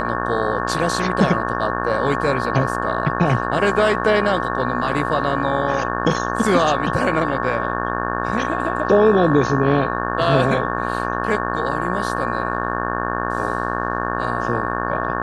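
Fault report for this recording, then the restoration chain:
mains buzz 60 Hz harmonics 30 −24 dBFS
whistle 1,100 Hz −26 dBFS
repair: notch filter 1,100 Hz, Q 30
hum removal 60 Hz, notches 30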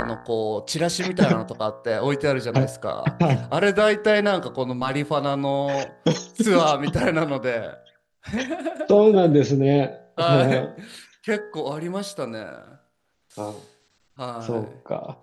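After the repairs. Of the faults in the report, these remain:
none of them is left

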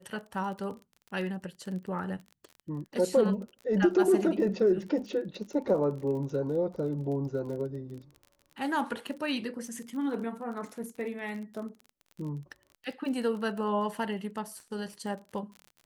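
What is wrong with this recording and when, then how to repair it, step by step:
surface crackle 33 per second −39 dBFS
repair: click removal

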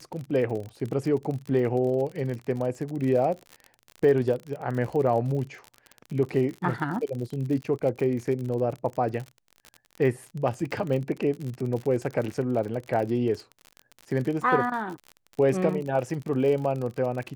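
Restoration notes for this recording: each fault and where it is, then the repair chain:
surface crackle 49 per second −32 dBFS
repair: click removal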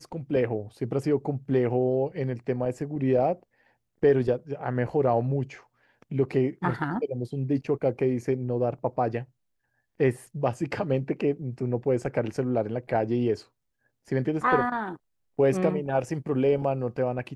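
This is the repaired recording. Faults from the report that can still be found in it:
none of them is left

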